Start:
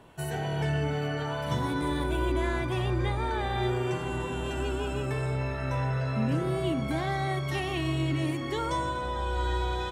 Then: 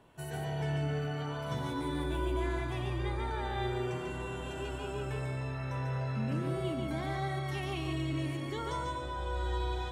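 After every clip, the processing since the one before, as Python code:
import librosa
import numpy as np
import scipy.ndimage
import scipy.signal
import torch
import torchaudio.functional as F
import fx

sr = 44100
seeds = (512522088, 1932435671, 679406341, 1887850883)

y = x + 10.0 ** (-4.0 / 20.0) * np.pad(x, (int(144 * sr / 1000.0), 0))[:len(x)]
y = F.gain(torch.from_numpy(y), -7.5).numpy()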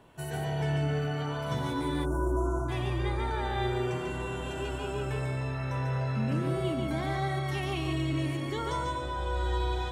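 y = fx.spec_erase(x, sr, start_s=2.05, length_s=0.64, low_hz=1500.0, high_hz=5400.0)
y = F.gain(torch.from_numpy(y), 4.0).numpy()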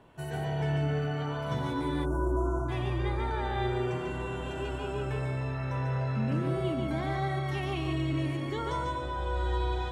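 y = fx.high_shelf(x, sr, hz=5000.0, db=-8.5)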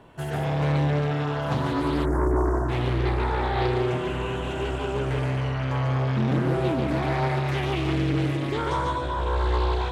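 y = fx.doppler_dist(x, sr, depth_ms=0.6)
y = F.gain(torch.from_numpy(y), 6.5).numpy()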